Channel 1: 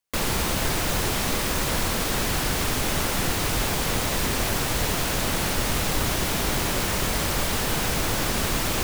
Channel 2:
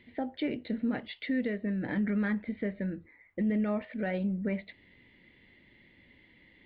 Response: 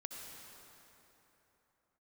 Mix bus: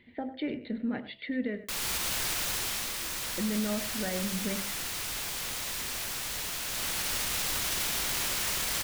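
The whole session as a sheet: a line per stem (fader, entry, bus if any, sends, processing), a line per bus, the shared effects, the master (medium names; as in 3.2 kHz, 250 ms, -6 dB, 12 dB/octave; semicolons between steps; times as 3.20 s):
-3.5 dB, 1.55 s, no send, no echo send, tilt shelf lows -7.5 dB, about 1.1 kHz; auto duck -10 dB, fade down 0.80 s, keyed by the second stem
-1.0 dB, 0.00 s, muted 1.64–3.02 s, no send, echo send -14 dB, de-hum 66.05 Hz, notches 10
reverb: none
echo: delay 100 ms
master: peak limiter -21.5 dBFS, peak gain reduction 8.5 dB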